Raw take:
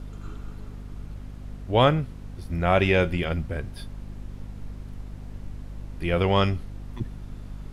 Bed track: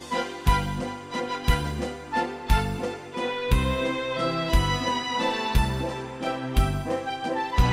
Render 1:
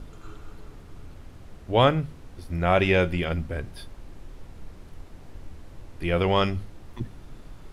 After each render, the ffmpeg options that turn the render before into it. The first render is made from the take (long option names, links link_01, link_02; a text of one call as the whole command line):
ffmpeg -i in.wav -af "bandreject=frequency=50:width_type=h:width=6,bandreject=frequency=100:width_type=h:width=6,bandreject=frequency=150:width_type=h:width=6,bandreject=frequency=200:width_type=h:width=6,bandreject=frequency=250:width_type=h:width=6" out.wav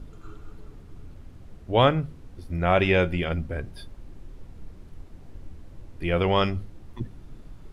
ffmpeg -i in.wav -af "afftdn=noise_reduction=6:noise_floor=-46" out.wav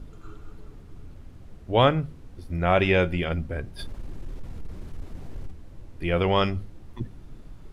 ffmpeg -i in.wav -filter_complex "[0:a]asplit=3[link_01][link_02][link_03];[link_01]afade=type=out:start_time=3.78:duration=0.02[link_04];[link_02]aeval=exprs='0.0422*sin(PI/2*1.58*val(0)/0.0422)':channel_layout=same,afade=type=in:start_time=3.78:duration=0.02,afade=type=out:start_time=5.5:duration=0.02[link_05];[link_03]afade=type=in:start_time=5.5:duration=0.02[link_06];[link_04][link_05][link_06]amix=inputs=3:normalize=0" out.wav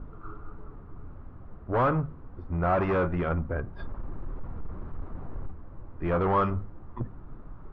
ffmpeg -i in.wav -af "asoftclip=type=hard:threshold=-23.5dB,lowpass=frequency=1200:width_type=q:width=2.6" out.wav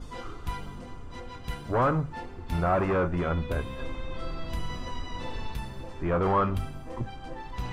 ffmpeg -i in.wav -i bed.wav -filter_complex "[1:a]volume=-14dB[link_01];[0:a][link_01]amix=inputs=2:normalize=0" out.wav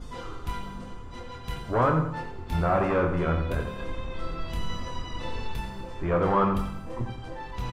ffmpeg -i in.wav -filter_complex "[0:a]asplit=2[link_01][link_02];[link_02]adelay=25,volume=-6.5dB[link_03];[link_01][link_03]amix=inputs=2:normalize=0,asplit=2[link_04][link_05];[link_05]adelay=87,lowpass=frequency=4400:poles=1,volume=-7.5dB,asplit=2[link_06][link_07];[link_07]adelay=87,lowpass=frequency=4400:poles=1,volume=0.44,asplit=2[link_08][link_09];[link_09]adelay=87,lowpass=frequency=4400:poles=1,volume=0.44,asplit=2[link_10][link_11];[link_11]adelay=87,lowpass=frequency=4400:poles=1,volume=0.44,asplit=2[link_12][link_13];[link_13]adelay=87,lowpass=frequency=4400:poles=1,volume=0.44[link_14];[link_04][link_06][link_08][link_10][link_12][link_14]amix=inputs=6:normalize=0" out.wav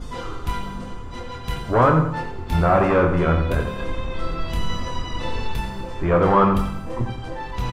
ffmpeg -i in.wav -af "volume=7dB" out.wav